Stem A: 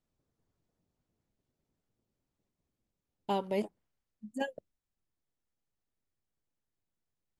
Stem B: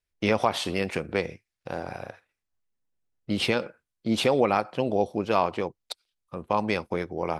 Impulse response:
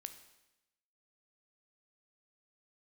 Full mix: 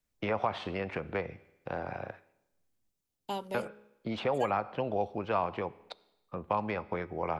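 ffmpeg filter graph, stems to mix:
-filter_complex "[0:a]highshelf=frequency=3300:gain=10.5,bandreject=frequency=69.64:width_type=h:width=4,bandreject=frequency=139.28:width_type=h:width=4,bandreject=frequency=208.92:width_type=h:width=4,bandreject=frequency=278.56:width_type=h:width=4,bandreject=frequency=348.2:width_type=h:width=4,bandreject=frequency=417.84:width_type=h:width=4,bandreject=frequency=487.48:width_type=h:width=4,bandreject=frequency=557.12:width_type=h:width=4,bandreject=frequency=626.76:width_type=h:width=4,volume=-3.5dB[link_01];[1:a]lowpass=2600,volume=-4dB,asplit=3[link_02][link_03][link_04];[link_02]atrim=end=2.89,asetpts=PTS-STARTPTS,afade=type=out:start_time=2.886:duration=0.004:curve=hsin[link_05];[link_03]atrim=start=2.89:end=3.54,asetpts=PTS-STARTPTS,volume=0[link_06];[link_04]atrim=start=3.54,asetpts=PTS-STARTPTS,afade=type=in:duration=0.004:curve=hsin[link_07];[link_05][link_06][link_07]concat=n=3:v=0:a=1,asplit=2[link_08][link_09];[link_09]volume=-3.5dB[link_10];[2:a]atrim=start_sample=2205[link_11];[link_10][link_11]afir=irnorm=-1:irlink=0[link_12];[link_01][link_08][link_12]amix=inputs=3:normalize=0,acrossover=split=160|560|1600[link_13][link_14][link_15][link_16];[link_13]acompressor=threshold=-41dB:ratio=4[link_17];[link_14]acompressor=threshold=-40dB:ratio=4[link_18];[link_15]acompressor=threshold=-27dB:ratio=4[link_19];[link_16]acompressor=threshold=-43dB:ratio=4[link_20];[link_17][link_18][link_19][link_20]amix=inputs=4:normalize=0"

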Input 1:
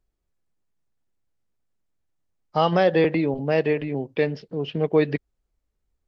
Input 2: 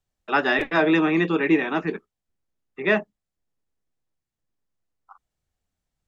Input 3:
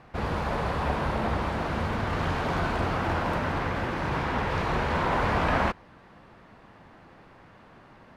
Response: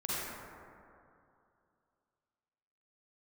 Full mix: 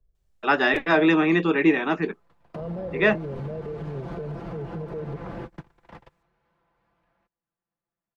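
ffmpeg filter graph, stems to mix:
-filter_complex "[0:a]tiltshelf=frequency=680:gain=9.5,aecho=1:1:1.8:0.77,alimiter=limit=-12.5dB:level=0:latency=1:release=65,volume=-5dB,asplit=2[link_01][link_02];[1:a]adelay=150,volume=0.5dB[link_03];[2:a]aecho=1:1:5.9:0.76,acompressor=threshold=-26dB:ratio=6,adelay=1550,volume=-1.5dB[link_04];[link_02]apad=whole_len=428496[link_05];[link_04][link_05]sidechaingate=range=-41dB:threshold=-60dB:ratio=16:detection=peak[link_06];[link_01][link_06]amix=inputs=2:normalize=0,acrossover=split=100|680[link_07][link_08][link_09];[link_07]acompressor=threshold=-40dB:ratio=4[link_10];[link_08]acompressor=threshold=-24dB:ratio=4[link_11];[link_09]acompressor=threshold=-47dB:ratio=4[link_12];[link_10][link_11][link_12]amix=inputs=3:normalize=0,alimiter=level_in=1.5dB:limit=-24dB:level=0:latency=1:release=98,volume=-1.5dB,volume=0dB[link_13];[link_03][link_13]amix=inputs=2:normalize=0"

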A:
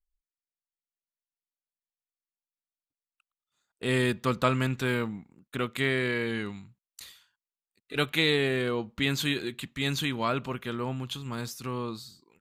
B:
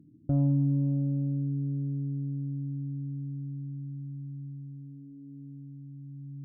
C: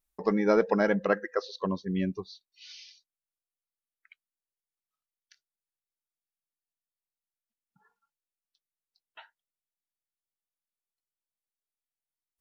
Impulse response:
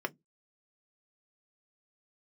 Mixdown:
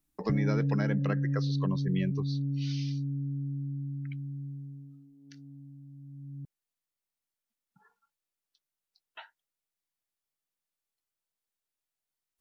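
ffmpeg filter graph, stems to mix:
-filter_complex "[1:a]agate=range=-33dB:threshold=-38dB:ratio=3:detection=peak,volume=2.5dB[link_01];[2:a]volume=3dB[link_02];[link_01][link_02]amix=inputs=2:normalize=0,acrossover=split=280|1600[link_03][link_04][link_05];[link_03]acompressor=threshold=-26dB:ratio=4[link_06];[link_04]acompressor=threshold=-40dB:ratio=4[link_07];[link_05]acompressor=threshold=-41dB:ratio=4[link_08];[link_06][link_07][link_08]amix=inputs=3:normalize=0"

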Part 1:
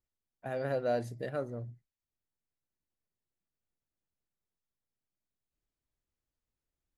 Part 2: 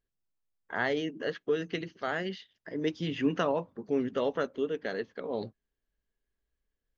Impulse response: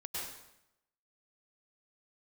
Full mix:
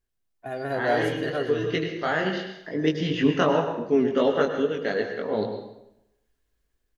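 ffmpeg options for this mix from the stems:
-filter_complex "[0:a]aecho=1:1:2.8:0.65,volume=0dB,asplit=3[link_01][link_02][link_03];[link_01]atrim=end=3.77,asetpts=PTS-STARTPTS,afade=type=out:start_time=3.766:duration=0.004:curve=hsin[link_04];[link_02]atrim=start=3.77:end=4.59,asetpts=PTS-STARTPTS,volume=0[link_05];[link_03]atrim=start=4.59,asetpts=PTS-STARTPTS,afade=type=in:duration=0.004:curve=hsin[link_06];[link_04][link_05][link_06]concat=n=3:v=0:a=1,asplit=3[link_07][link_08][link_09];[link_08]volume=-15dB[link_10];[1:a]flanger=delay=18.5:depth=3.5:speed=2.8,volume=1.5dB,asplit=2[link_11][link_12];[link_12]volume=-3.5dB[link_13];[link_09]apad=whole_len=307776[link_14];[link_11][link_14]sidechaincompress=threshold=-44dB:ratio=8:attack=16:release=162[link_15];[2:a]atrim=start_sample=2205[link_16];[link_13][link_16]afir=irnorm=-1:irlink=0[link_17];[link_10]aecho=0:1:118|236|354:1|0.18|0.0324[link_18];[link_07][link_15][link_17][link_18]amix=inputs=4:normalize=0,dynaudnorm=framelen=130:gausssize=9:maxgain=6dB"

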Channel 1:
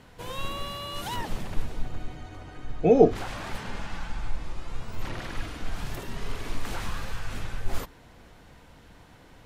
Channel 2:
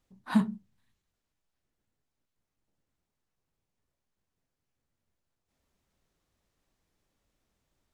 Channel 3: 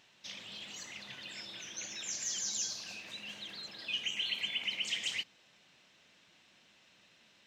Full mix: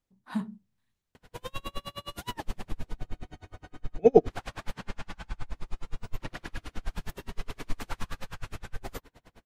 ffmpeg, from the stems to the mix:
ffmpeg -i stem1.wav -i stem2.wav -filter_complex "[0:a]aeval=exprs='val(0)*pow(10,-36*(0.5-0.5*cos(2*PI*9.6*n/s))/20)':channel_layout=same,adelay=1150,volume=1.5dB[link_01];[1:a]dynaudnorm=framelen=230:gausssize=5:maxgain=4dB,volume=-8dB[link_02];[link_01][link_02]amix=inputs=2:normalize=0" out.wav

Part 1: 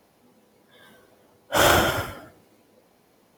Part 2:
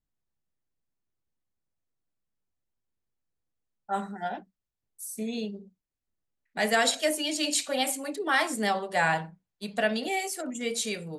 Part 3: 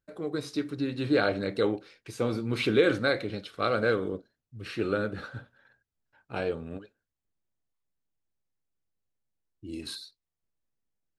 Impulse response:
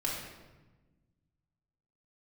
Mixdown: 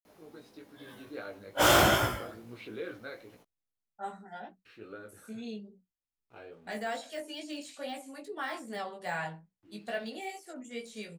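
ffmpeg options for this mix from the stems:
-filter_complex "[0:a]asoftclip=type=hard:threshold=-17.5dB,adelay=50,volume=2dB[link_01];[1:a]deesser=0.9,adelay=100,volume=-6.5dB[link_02];[2:a]aeval=exprs='val(0)*gte(abs(val(0)),0.00376)':channel_layout=same,bass=frequency=250:gain=-6,treble=frequency=4000:gain=-7,volume=-13.5dB,asplit=3[link_03][link_04][link_05];[link_03]atrim=end=3.35,asetpts=PTS-STARTPTS,afade=type=out:start_time=3.346:duration=0.004:curve=hsin[link_06];[link_04]atrim=start=3.35:end=4.65,asetpts=PTS-STARTPTS,volume=0[link_07];[link_05]atrim=start=4.65,asetpts=PTS-STARTPTS,afade=type=in:duration=0.004:curve=hsin[link_08];[link_06][link_07][link_08]concat=n=3:v=0:a=1[link_09];[link_01][link_02][link_09]amix=inputs=3:normalize=0,flanger=delay=16.5:depth=2.5:speed=2.4"

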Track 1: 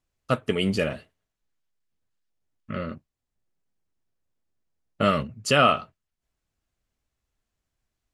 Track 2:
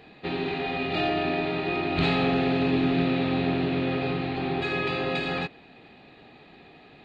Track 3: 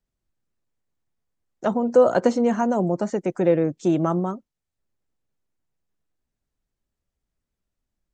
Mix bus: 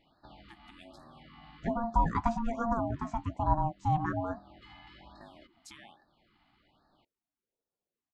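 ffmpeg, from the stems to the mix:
ffmpeg -i stem1.wav -i stem2.wav -i stem3.wav -filter_complex "[0:a]equalizer=frequency=480:width=1.1:gain=-13,adelay=200,volume=-15dB[link_01];[1:a]acompressor=threshold=-29dB:ratio=5,volume=-14dB[link_02];[2:a]highpass=frequency=84:width=0.5412,highpass=frequency=84:width=1.3066,highshelf=frequency=3400:gain=-9.5,flanger=delay=2:depth=9.6:regen=58:speed=0.79:shape=sinusoidal,volume=-1.5dB,asplit=2[link_03][link_04];[link_04]apad=whole_len=310776[link_05];[link_02][link_05]sidechaincompress=threshold=-35dB:ratio=16:attack=12:release=530[link_06];[link_01][link_06]amix=inputs=2:normalize=0,acompressor=threshold=-46dB:ratio=6,volume=0dB[link_07];[link_03][link_07]amix=inputs=2:normalize=0,aeval=exprs='val(0)*sin(2*PI*460*n/s)':channel_layout=same,afftfilt=real='re*(1-between(b*sr/1024,430*pow(2700/430,0.5+0.5*sin(2*PI*1.2*pts/sr))/1.41,430*pow(2700/430,0.5+0.5*sin(2*PI*1.2*pts/sr))*1.41))':imag='im*(1-between(b*sr/1024,430*pow(2700/430,0.5+0.5*sin(2*PI*1.2*pts/sr))/1.41,430*pow(2700/430,0.5+0.5*sin(2*PI*1.2*pts/sr))*1.41))':win_size=1024:overlap=0.75" out.wav

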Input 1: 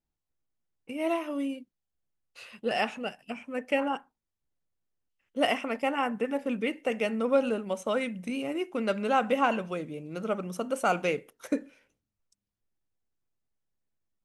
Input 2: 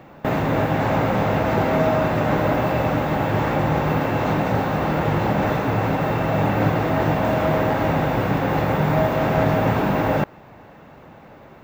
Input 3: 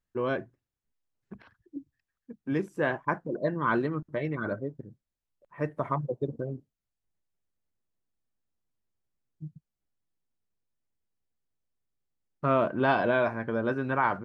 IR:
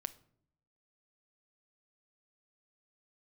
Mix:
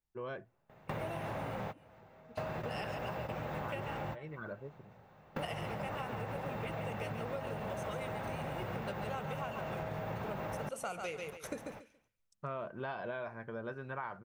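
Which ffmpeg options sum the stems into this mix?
-filter_complex "[0:a]adynamicequalizer=threshold=0.00708:dfrequency=3200:dqfactor=0.7:tfrequency=3200:tqfactor=0.7:attack=5:release=100:ratio=0.375:range=3:mode=boostabove:tftype=highshelf,volume=-4dB,asplit=3[link_01][link_02][link_03];[link_02]volume=-7.5dB[link_04];[1:a]acompressor=threshold=-25dB:ratio=2,adelay=450,volume=-4.5dB[link_05];[2:a]volume=-11.5dB,asplit=2[link_06][link_07];[link_07]volume=-16dB[link_08];[link_03]apad=whole_len=532728[link_09];[link_05][link_09]sidechaingate=range=-29dB:threshold=-56dB:ratio=16:detection=peak[link_10];[3:a]atrim=start_sample=2205[link_11];[link_08][link_11]afir=irnorm=-1:irlink=0[link_12];[link_04]aecho=0:1:140|280|420:1|0.21|0.0441[link_13];[link_01][link_10][link_06][link_12][link_13]amix=inputs=5:normalize=0,equalizer=frequency=280:width_type=o:width=0.42:gain=-10.5,acompressor=threshold=-36dB:ratio=10"

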